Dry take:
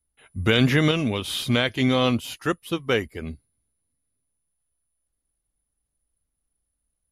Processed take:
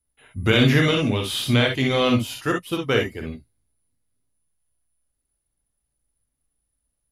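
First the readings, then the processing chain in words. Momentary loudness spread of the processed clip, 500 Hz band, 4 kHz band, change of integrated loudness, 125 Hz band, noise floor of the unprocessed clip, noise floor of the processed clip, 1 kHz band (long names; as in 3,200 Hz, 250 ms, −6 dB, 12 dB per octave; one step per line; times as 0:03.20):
12 LU, +2.5 dB, +2.0 dB, +2.0 dB, +3.0 dB, −80 dBFS, −78 dBFS, +1.5 dB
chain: reverb whose tail is shaped and stops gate 80 ms rising, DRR 1.5 dB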